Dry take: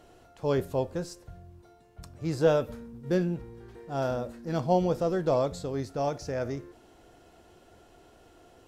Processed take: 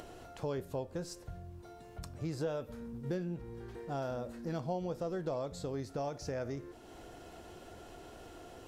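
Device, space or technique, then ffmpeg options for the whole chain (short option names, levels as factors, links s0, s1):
upward and downward compression: -af "acompressor=mode=upward:threshold=0.00562:ratio=2.5,acompressor=threshold=0.0141:ratio=4,volume=1.12"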